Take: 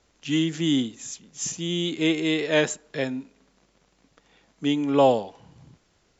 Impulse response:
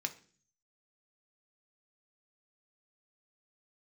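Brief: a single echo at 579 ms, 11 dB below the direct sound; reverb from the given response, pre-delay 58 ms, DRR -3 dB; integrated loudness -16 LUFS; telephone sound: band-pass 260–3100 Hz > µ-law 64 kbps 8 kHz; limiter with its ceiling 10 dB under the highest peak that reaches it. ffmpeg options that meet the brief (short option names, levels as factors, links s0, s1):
-filter_complex "[0:a]alimiter=limit=0.141:level=0:latency=1,aecho=1:1:579:0.282,asplit=2[s0][s1];[1:a]atrim=start_sample=2205,adelay=58[s2];[s1][s2]afir=irnorm=-1:irlink=0,volume=1.26[s3];[s0][s3]amix=inputs=2:normalize=0,highpass=260,lowpass=3100,volume=3.16" -ar 8000 -c:a pcm_mulaw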